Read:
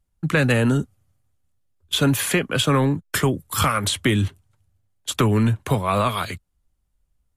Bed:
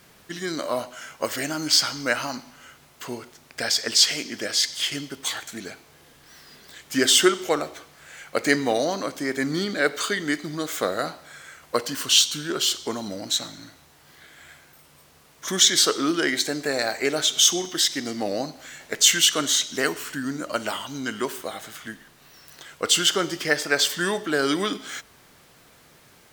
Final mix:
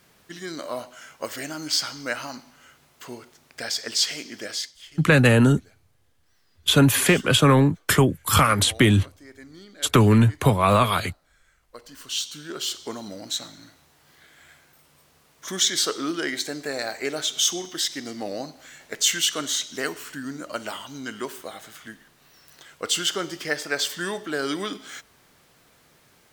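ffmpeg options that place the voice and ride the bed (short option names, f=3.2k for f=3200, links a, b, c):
-filter_complex "[0:a]adelay=4750,volume=2.5dB[a];[1:a]volume=10.5dB,afade=t=out:st=4.52:d=0.21:silence=0.177828,afade=t=in:st=11.77:d=1.1:silence=0.16788[b];[a][b]amix=inputs=2:normalize=0"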